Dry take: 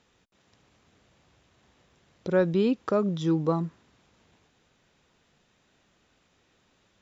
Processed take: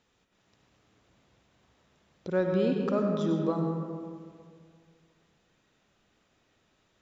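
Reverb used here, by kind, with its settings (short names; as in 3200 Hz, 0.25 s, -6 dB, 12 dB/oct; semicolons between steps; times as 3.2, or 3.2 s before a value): digital reverb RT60 2.1 s, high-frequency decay 0.4×, pre-delay 55 ms, DRR 2 dB; gain -5 dB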